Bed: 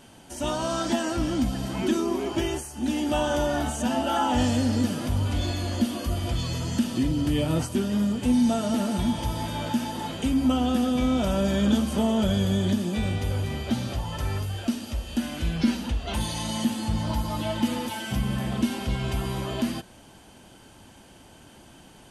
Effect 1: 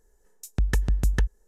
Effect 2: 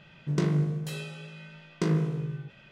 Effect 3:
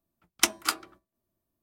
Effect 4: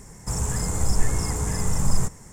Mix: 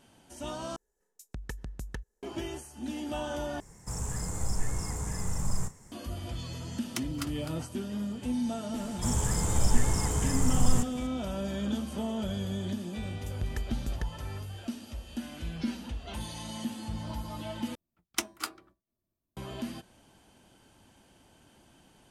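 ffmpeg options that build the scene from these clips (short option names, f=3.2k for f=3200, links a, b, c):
-filter_complex "[1:a]asplit=2[a][b];[4:a]asplit=2[c][d];[3:a]asplit=2[e][f];[0:a]volume=-10dB[g];[a]lowshelf=f=67:g=-11.5[h];[c]asplit=2[i][j];[j]adelay=34,volume=-12dB[k];[i][k]amix=inputs=2:normalize=0[l];[e]aecho=1:1:256:0.422[m];[f]lowshelf=f=350:g=6.5[n];[g]asplit=4[o][p][q][r];[o]atrim=end=0.764[s];[h]atrim=end=1.47,asetpts=PTS-STARTPTS,volume=-11dB[t];[p]atrim=start=2.226:end=3.604[u];[l]atrim=end=2.32,asetpts=PTS-STARTPTS,volume=-9dB[v];[q]atrim=start=5.916:end=17.754[w];[n]atrim=end=1.62,asetpts=PTS-STARTPTS,volume=-8.5dB[x];[r]atrim=start=19.366[y];[m]atrim=end=1.62,asetpts=PTS-STARTPTS,volume=-14.5dB,afade=t=in:d=0.004:c=hsin,afade=t=out:st=1.616:d=0.004:c=hsin,adelay=6530[z];[d]atrim=end=2.32,asetpts=PTS-STARTPTS,volume=-3dB,afade=t=in:d=0.004:c=hsin,afade=t=out:st=2.316:d=0.004:c=hsin,adelay=8750[aa];[b]atrim=end=1.47,asetpts=PTS-STARTPTS,volume=-11.5dB,afade=t=in:d=0.004:c=hsin,afade=t=out:st=1.466:d=0.004:c=hsin,adelay=12830[ab];[s][t]acrossfade=d=0.004:c1=hsin:c2=hsin[ac];[ac][u]acrossfade=d=0.004:c1=hsin:c2=hsin[ad];[ad][v]acrossfade=d=0.004:c1=hsin:c2=hsin[ae];[ae][w]acrossfade=d=0.004:c1=hsin:c2=hsin[af];[af][x]acrossfade=d=0.004:c1=hsin:c2=hsin[ag];[ag][y]acrossfade=d=0.004:c1=hsin:c2=hsin[ah];[ah][z][aa][ab]amix=inputs=4:normalize=0"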